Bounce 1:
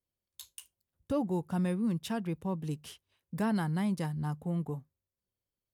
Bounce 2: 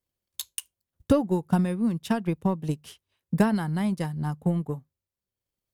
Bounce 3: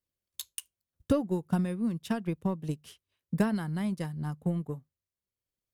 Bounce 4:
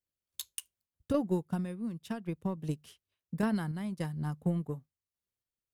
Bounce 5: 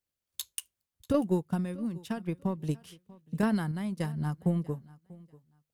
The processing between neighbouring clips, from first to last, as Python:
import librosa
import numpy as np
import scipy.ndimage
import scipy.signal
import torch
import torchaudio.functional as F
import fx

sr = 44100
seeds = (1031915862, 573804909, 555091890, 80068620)

y1 = fx.transient(x, sr, attack_db=11, sustain_db=-4)
y1 = y1 * librosa.db_to_amplitude(3.5)
y2 = fx.peak_eq(y1, sr, hz=840.0, db=-4.5, octaves=0.39)
y2 = y2 * librosa.db_to_amplitude(-5.0)
y3 = fx.tremolo_random(y2, sr, seeds[0], hz=3.5, depth_pct=55)
y4 = fx.echo_feedback(y3, sr, ms=640, feedback_pct=20, wet_db=-22)
y4 = y4 * librosa.db_to_amplitude(3.0)